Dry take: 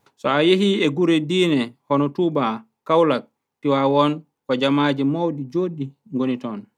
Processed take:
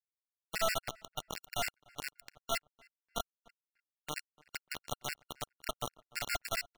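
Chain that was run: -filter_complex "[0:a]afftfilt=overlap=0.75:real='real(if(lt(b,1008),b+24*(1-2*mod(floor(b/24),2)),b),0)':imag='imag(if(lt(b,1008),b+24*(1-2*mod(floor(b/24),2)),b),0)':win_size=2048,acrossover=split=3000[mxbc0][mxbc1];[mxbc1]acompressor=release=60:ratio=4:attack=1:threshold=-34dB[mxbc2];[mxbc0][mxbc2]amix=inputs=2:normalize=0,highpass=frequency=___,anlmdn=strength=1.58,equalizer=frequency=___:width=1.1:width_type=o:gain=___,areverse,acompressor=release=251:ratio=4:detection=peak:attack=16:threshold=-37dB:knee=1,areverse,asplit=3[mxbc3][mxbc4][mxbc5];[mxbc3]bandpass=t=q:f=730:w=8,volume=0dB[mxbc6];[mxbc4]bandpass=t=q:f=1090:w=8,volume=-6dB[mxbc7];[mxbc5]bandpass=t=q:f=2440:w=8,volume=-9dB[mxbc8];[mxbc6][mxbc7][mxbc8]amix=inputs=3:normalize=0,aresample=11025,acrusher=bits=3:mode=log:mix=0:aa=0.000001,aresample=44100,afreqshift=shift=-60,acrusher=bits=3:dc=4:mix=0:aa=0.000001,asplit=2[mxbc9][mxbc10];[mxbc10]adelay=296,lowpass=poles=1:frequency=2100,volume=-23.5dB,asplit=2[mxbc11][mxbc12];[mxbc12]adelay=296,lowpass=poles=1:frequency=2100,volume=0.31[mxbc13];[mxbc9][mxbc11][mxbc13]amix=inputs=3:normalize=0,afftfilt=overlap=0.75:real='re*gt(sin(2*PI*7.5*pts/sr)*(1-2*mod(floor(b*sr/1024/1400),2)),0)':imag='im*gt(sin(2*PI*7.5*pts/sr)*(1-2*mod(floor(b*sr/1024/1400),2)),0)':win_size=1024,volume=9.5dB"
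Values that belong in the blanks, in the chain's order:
44, 3200, -14.5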